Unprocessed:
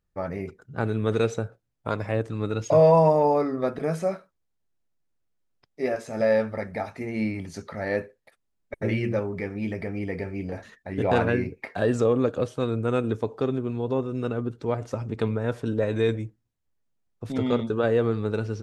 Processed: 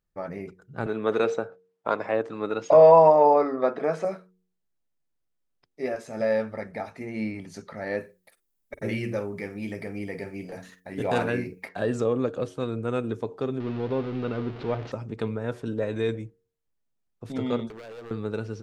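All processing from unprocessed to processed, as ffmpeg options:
-filter_complex "[0:a]asettb=1/sr,asplit=3[a][b][c];[a]atrim=end=0.864[d];[b]atrim=start=0.86:end=4.05,asetpts=PTS-STARTPTS,afade=t=in:d=0.004:c=qsin,afade=t=out:st=3.186:d=0.004:c=qsin,highpass=220,lowpass=6.3k,equalizer=f=880:w=0.52:g=8[e];[c]atrim=start=4.046[f];[d][e]acrossfade=d=0.004:c1=hsin:c2=qsin[g];[g][f]acrossfade=d=0.004:c1=qsin:c2=hsin,asettb=1/sr,asplit=3[h][i][j];[h]atrim=end=8.004[k];[i]atrim=start=8:end=11.69,asetpts=PTS-STARTPTS,afade=t=in:d=0.004:c=qsin,afade=t=out:st=3.686:d=0.004:c=qsin,aemphasis=mode=production:type=50fm,asplit=2[l][m];[m]adelay=49,volume=-14dB[n];[l][n]amix=inputs=2:normalize=0,atrim=end_sample=162729[o];[j]atrim=start=11.686[p];[k][o]acrossfade=d=0.004:c1=hsin:c2=qsin[q];[q][p]acrossfade=d=0.004:c1=qsin:c2=hsin,asettb=1/sr,asplit=3[r][s][t];[r]atrim=end=13.604[u];[s]atrim=start=13.6:end=14.92,asetpts=PTS-STARTPTS,afade=t=in:d=0.004:c=qsin,afade=t=out:st=1.316:d=0.004:c=qsin,aeval=exprs='val(0)+0.5*0.0282*sgn(val(0))':c=same,lowpass=f=4k:w=0.5412,lowpass=f=4k:w=1.3066[v];[t]atrim=start=14.916[w];[u][v]acrossfade=d=0.004:c1=hsin:c2=qsin[x];[x][w]acrossfade=d=0.004:c1=qsin:c2=hsin,asettb=1/sr,asplit=3[y][z][aa];[y]atrim=end=17.684[ab];[z]atrim=start=17.68:end=18.11,asetpts=PTS-STARTPTS,afade=t=in:d=0.004:c=qsin,afade=t=out:st=0.426:d=0.004:c=qsin,lowshelf=f=350:g=-9.5,acompressor=threshold=-32dB:ratio=8:attack=3.2:release=140:knee=1:detection=peak,aeval=exprs='0.0224*(abs(mod(val(0)/0.0224+3,4)-2)-1)':c=same[ac];[aa]atrim=start=18.106[ad];[ab][ac]acrossfade=d=0.004:c1=hsin:c2=qsin[ae];[ae][ad]acrossfade=d=0.004:c1=qsin:c2=hsin,equalizer=f=87:w=4.8:g=-12.5,bandreject=f=91.86:t=h:w=4,bandreject=f=183.72:t=h:w=4,bandreject=f=275.58:t=h:w=4,bandreject=f=367.44:t=h:w=4,bandreject=f=459.3:t=h:w=4,volume=-3dB"

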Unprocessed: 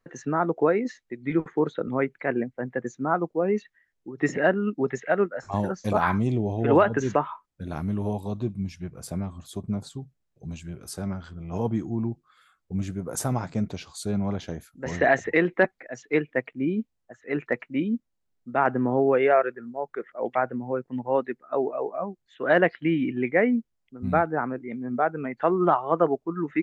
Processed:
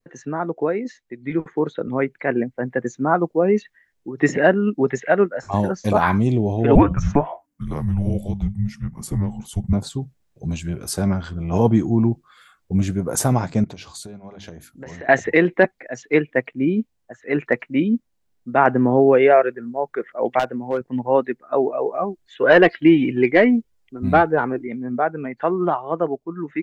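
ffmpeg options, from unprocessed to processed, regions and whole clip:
-filter_complex "[0:a]asettb=1/sr,asplit=3[a][b][c];[a]atrim=end=6.754[d];[b]atrim=start=6.75:end=9.73,asetpts=PTS-STARTPTS,afade=t=in:d=0.004:c=qsin,afade=t=out:st=2.976:d=0.004:c=qsin,equalizer=f=4.2k:t=o:w=1.2:g=-7.5,afreqshift=-300[e];[c]atrim=start=9.726[f];[d][e]acrossfade=d=0.004:c1=hsin:c2=qsin[g];[g][f]acrossfade=d=0.004:c1=qsin:c2=hsin,asettb=1/sr,asplit=3[h][i][j];[h]atrim=end=13.644[k];[i]atrim=start=13.64:end=15.09,asetpts=PTS-STARTPTS,afade=t=in:d=0.004:c=qsin,afade=t=out:st=1.446:d=0.004:c=qsin,acompressor=threshold=-39dB:ratio=6:attack=3.2:release=140:knee=1:detection=peak,bandreject=f=50:t=h:w=6,bandreject=f=100:t=h:w=6,bandreject=f=150:t=h:w=6,bandreject=f=200:t=h:w=6,bandreject=f=250:t=h:w=6,bandreject=f=300:t=h:w=6,bandreject=f=350:t=h:w=6[l];[j]atrim=start=15.086[m];[k][l]acrossfade=d=0.004:c1=hsin:c2=qsin[n];[n][m]acrossfade=d=0.004:c1=qsin:c2=hsin,asettb=1/sr,asplit=3[o][p][q];[o]atrim=end=20.394[r];[p]atrim=start=20.39:end=20.81,asetpts=PTS-STARTPTS,afade=t=in:d=0.004:c=qsin,afade=t=out:st=0.416:d=0.004:c=qsin,lowshelf=f=170:g=-10.5,asoftclip=type=hard:threshold=-21.5dB[s];[q]atrim=start=20.806[t];[r][s]acrossfade=d=0.004:c1=hsin:c2=qsin[u];[u][t]acrossfade=d=0.004:c1=qsin:c2=hsin,asettb=1/sr,asplit=3[v][w][x];[v]atrim=end=21.864[y];[w]atrim=start=21.86:end=24.67,asetpts=PTS-STARTPTS,afade=t=in:d=0.004:c=qsin,afade=t=out:st=2.806:d=0.004:c=qsin,bandreject=f=930:w=24,acontrast=88,flanger=delay=1.9:depth=1.3:regen=37:speed=1.6:shape=triangular[z];[x]atrim=start=24.666[aa];[y][z]acrossfade=d=0.004:c1=hsin:c2=qsin[ab];[ab][aa]acrossfade=d=0.004:c1=qsin:c2=hsin,bandreject=f=1.3k:w=19,adynamicequalizer=threshold=0.0126:dfrequency=1300:dqfactor=1.1:tfrequency=1300:tqfactor=1.1:attack=5:release=100:ratio=0.375:range=2.5:mode=cutabove:tftype=bell,dynaudnorm=f=340:g=13:m=12.5dB"

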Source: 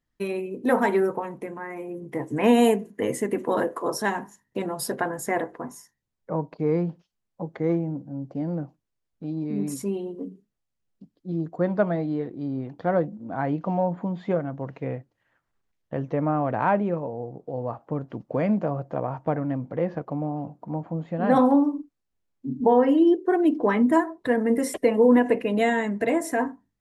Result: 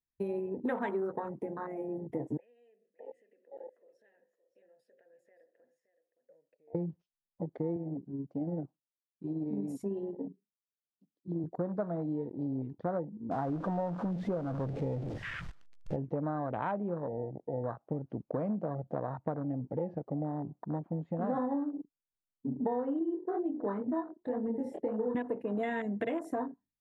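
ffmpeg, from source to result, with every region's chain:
-filter_complex "[0:a]asettb=1/sr,asplit=3[a][b][c];[a]atrim=end=2.374[d];[b]atrim=start=2.37:end=6.75,asetpts=PTS-STARTPTS,afade=t=in:d=0.004:c=qsin,afade=t=out:st=4.376:d=0.004:c=qsin,acompressor=threshold=-33dB:ratio=8:attack=3.2:release=140:knee=1:detection=peak,asplit=3[e][f][g];[e]bandpass=f=530:t=q:w=8,volume=0dB[h];[f]bandpass=f=1.84k:t=q:w=8,volume=-6dB[i];[g]bandpass=f=2.48k:t=q:w=8,volume=-9dB[j];[h][i][j]amix=inputs=3:normalize=0,aecho=1:1:569:0.237,atrim=end_sample=193158[k];[c]atrim=start=6.746[l];[d][k]acrossfade=d=0.004:c1=hsin:c2=qsin[m];[m][l]acrossfade=d=0.004:c1=qsin:c2=hsin,asettb=1/sr,asplit=3[n][o][p];[n]atrim=end=7.764[q];[o]atrim=start=7.76:end=11.44,asetpts=PTS-STARTPTS,afade=t=in:d=0.004:c=qsin,afade=t=out:st=3.676:d=0.004:c=qsin,highpass=160,tremolo=f=18:d=0.33[r];[p]atrim=start=11.436[s];[q][r]acrossfade=d=0.004:c1=hsin:c2=qsin[t];[t][s]acrossfade=d=0.004:c1=qsin:c2=hsin,asettb=1/sr,asplit=3[u][v][w];[u]atrim=end=13.314[x];[v]atrim=start=13.31:end=15.96,asetpts=PTS-STARTPTS,afade=t=in:d=0.004:c=qsin,afade=t=out:st=2.646:d=0.004:c=qsin,aeval=exprs='val(0)+0.5*0.0422*sgn(val(0))':c=same,lowpass=5.9k,aecho=1:1:139:0.0944,atrim=end_sample=116865[y];[w]atrim=start=15.956[z];[x][y]acrossfade=d=0.004:c1=hsin:c2=qsin[aa];[aa][z]acrossfade=d=0.004:c1=qsin:c2=hsin,asettb=1/sr,asplit=3[ab][ac][ad];[ab]atrim=end=22.994[ae];[ac]atrim=start=22.99:end=25.15,asetpts=PTS-STARTPTS,afade=t=in:d=0.004:c=qsin,afade=t=out:st=2.156:d=0.004:c=qsin,lowpass=f=2.5k:p=1,bandreject=f=60:t=h:w=6,bandreject=f=120:t=h:w=6,bandreject=f=180:t=h:w=6,bandreject=f=240:t=h:w=6,bandreject=f=300:t=h:w=6,bandreject=f=360:t=h:w=6,bandreject=f=420:t=h:w=6,bandreject=f=480:t=h:w=6,bandreject=f=540:t=h:w=6,flanger=delay=18:depth=7.6:speed=2[af];[ad]atrim=start=25.146[ag];[ae][af]acrossfade=d=0.004:c1=hsin:c2=qsin[ah];[ah][ag]acrossfade=d=0.004:c1=qsin:c2=hsin,afwtdn=0.0316,acompressor=threshold=-29dB:ratio=5,volume=-2dB"

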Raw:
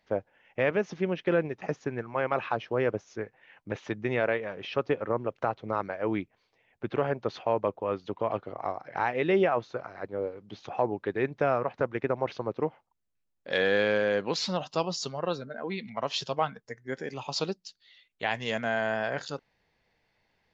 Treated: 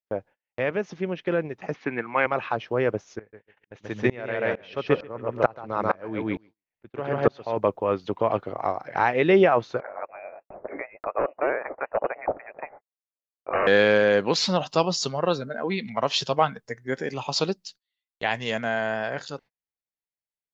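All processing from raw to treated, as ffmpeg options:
-filter_complex "[0:a]asettb=1/sr,asplit=3[a][b][c];[a]atrim=end=1.744[d];[b]atrim=start=1.74:end=2.26,asetpts=PTS-STARTPTS,afade=t=in:d=0.004:c=qsin,afade=t=out:st=0.516:d=0.004:c=qsin,acontrast=77,highpass=240,equalizer=f=410:t=q:w=4:g=-6,equalizer=f=600:t=q:w=4:g=-7,equalizer=f=2.2k:t=q:w=4:g=8,lowpass=f=4k:w=0.5412,lowpass=f=4k:w=1.3066[e];[c]atrim=start=2.256[f];[d][e]acrossfade=d=0.004:c1=hsin:c2=qsin[g];[g][f]acrossfade=d=0.004:c1=qsin:c2=hsin,asettb=1/sr,asplit=3[h][i][j];[h]atrim=end=3.194[k];[i]atrim=start=3.19:end=7.57,asetpts=PTS-STARTPTS,afade=t=in:d=0.004:c=qsin,afade=t=out:st=4.376:d=0.004:c=qsin,acontrast=24,aecho=1:1:136|272|408:0.596|0.137|0.0315,atrim=end_sample=193158,aeval=exprs='val(0)*pow(10,-26*if(lt(mod(-2.2*n/s,1),2*abs(-2.2)/1000),1-mod(-2.2*n/s,1)/(2*abs(-2.2)/1000),(mod(-2.2*n/s,1)-2*abs(-2.2)/1000)/(1-2*abs(-2.2)/1000))/20)':c=same[l];[j]atrim=start=7.566[m];[k][l]acrossfade=d=0.004:c1=hsin:c2=qsin[n];[n][m]acrossfade=d=0.004:c1=qsin:c2=hsin,asettb=1/sr,asplit=3[o][p][q];[o]atrim=end=9.804[r];[p]atrim=start=9.8:end=13.67,asetpts=PTS-STARTPTS,afade=t=in:d=0.004:c=qsin,afade=t=out:st=3.866:d=0.004:c=qsin,highpass=f=2.3k:t=q:w=13,aeval=exprs='0.1*(abs(mod(val(0)/0.1+3,4)-2)-1)':c=same,lowpass=f=2.5k:t=q:w=0.5098,lowpass=f=2.5k:t=q:w=0.6013,lowpass=f=2.5k:t=q:w=0.9,lowpass=f=2.5k:t=q:w=2.563,afreqshift=-2900[s];[q]atrim=start=13.666[t];[r][s]acrossfade=d=0.004:c1=hsin:c2=qsin[u];[u][t]acrossfade=d=0.004:c1=qsin:c2=hsin,dynaudnorm=f=270:g=21:m=7dB,agate=range=-33dB:threshold=-46dB:ratio=16:detection=peak"

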